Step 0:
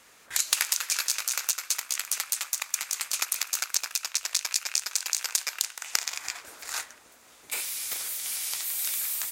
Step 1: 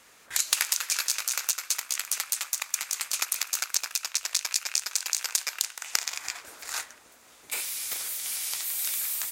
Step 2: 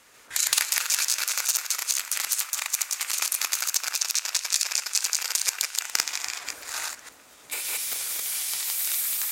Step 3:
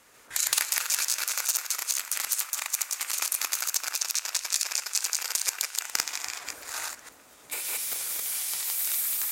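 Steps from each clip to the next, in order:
no processing that can be heard
delay that plays each chunk backwards 139 ms, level 0 dB; gate on every frequency bin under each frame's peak −30 dB strong; feedback delay network reverb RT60 0.61 s, low-frequency decay 1.55×, high-frequency decay 0.95×, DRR 16 dB
parametric band 3,600 Hz −4 dB 2.6 octaves

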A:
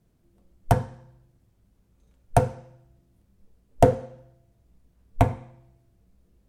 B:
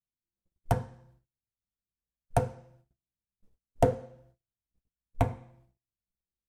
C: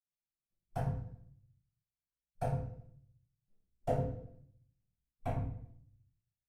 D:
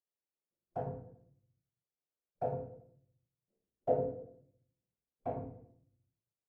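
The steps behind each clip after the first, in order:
noise gate −54 dBFS, range −30 dB; level −7 dB
convolution reverb RT60 0.60 s, pre-delay 46 ms; level −5.5 dB
resonant band-pass 450 Hz, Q 1.7; level +6.5 dB

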